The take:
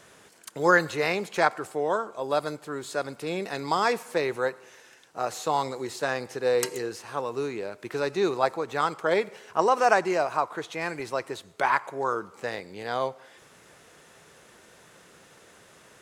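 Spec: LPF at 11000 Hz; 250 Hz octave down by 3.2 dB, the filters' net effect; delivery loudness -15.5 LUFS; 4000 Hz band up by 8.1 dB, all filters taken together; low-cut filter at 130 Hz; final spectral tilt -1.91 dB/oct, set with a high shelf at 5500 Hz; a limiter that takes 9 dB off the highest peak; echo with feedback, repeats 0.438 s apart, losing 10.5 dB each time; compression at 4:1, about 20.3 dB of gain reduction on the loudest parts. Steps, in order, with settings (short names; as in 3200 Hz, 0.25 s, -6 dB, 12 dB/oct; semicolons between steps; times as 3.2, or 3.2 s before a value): HPF 130 Hz; LPF 11000 Hz; bell 250 Hz -5 dB; bell 4000 Hz +6 dB; high shelf 5500 Hz +9 dB; compressor 4:1, threshold -41 dBFS; limiter -31 dBFS; feedback echo 0.438 s, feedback 30%, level -10.5 dB; gain +28 dB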